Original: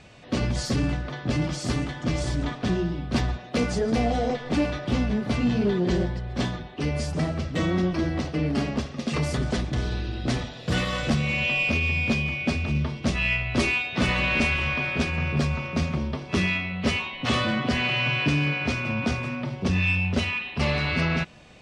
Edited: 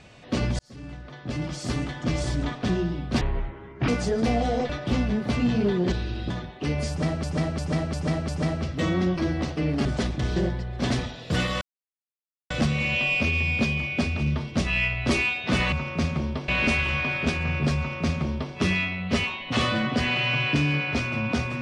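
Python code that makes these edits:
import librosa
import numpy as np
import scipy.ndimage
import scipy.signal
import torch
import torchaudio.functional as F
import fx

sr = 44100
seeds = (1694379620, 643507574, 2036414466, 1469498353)

y = fx.edit(x, sr, fx.fade_in_span(start_s=0.59, length_s=1.38),
    fx.speed_span(start_s=3.21, length_s=0.37, speed=0.55),
    fx.cut(start_s=4.39, length_s=0.31),
    fx.swap(start_s=5.93, length_s=0.54, other_s=9.9, other_length_s=0.38),
    fx.repeat(start_s=7.05, length_s=0.35, count=5),
    fx.cut(start_s=8.62, length_s=0.77),
    fx.insert_silence(at_s=10.99, length_s=0.89),
    fx.duplicate(start_s=15.5, length_s=0.76, to_s=14.21), tone=tone)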